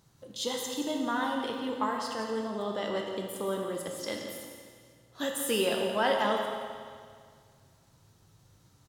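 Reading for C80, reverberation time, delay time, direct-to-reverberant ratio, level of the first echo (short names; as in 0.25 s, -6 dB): 3.0 dB, 2.0 s, 0.171 s, 0.5 dB, -11.0 dB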